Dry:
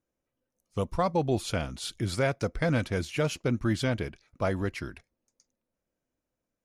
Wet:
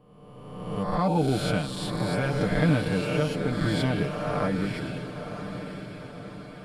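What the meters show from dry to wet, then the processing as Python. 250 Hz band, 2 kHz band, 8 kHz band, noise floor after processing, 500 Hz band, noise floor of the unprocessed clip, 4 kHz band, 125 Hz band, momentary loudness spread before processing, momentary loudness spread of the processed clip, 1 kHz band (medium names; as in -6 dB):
+5.0 dB, +3.0 dB, -1.5 dB, -47 dBFS, +2.0 dB, under -85 dBFS, +3.0 dB, +4.0 dB, 8 LU, 16 LU, +3.5 dB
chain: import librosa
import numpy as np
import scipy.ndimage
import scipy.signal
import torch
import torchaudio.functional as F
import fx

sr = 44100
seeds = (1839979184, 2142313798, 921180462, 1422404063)

p1 = fx.spec_swells(x, sr, rise_s=1.27)
p2 = fx.graphic_eq_31(p1, sr, hz=(200, 2000, 6300), db=(11, -4, -12))
p3 = p2 * (1.0 - 0.55 / 2.0 + 0.55 / 2.0 * np.cos(2.0 * np.pi * 0.75 * (np.arange(len(p2)) / sr)))
p4 = fx.rider(p3, sr, range_db=10, speed_s=0.5)
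p5 = p3 + (p4 * librosa.db_to_amplitude(-0.5))
p6 = fx.high_shelf(p5, sr, hz=12000.0, db=-7.5)
p7 = p6 + 0.78 * np.pad(p6, (int(6.7 * sr / 1000.0), 0))[:len(p6)]
p8 = p7 + fx.echo_diffused(p7, sr, ms=1019, feedback_pct=52, wet_db=-9.0, dry=0)
y = p8 * librosa.db_to_amplitude(-6.5)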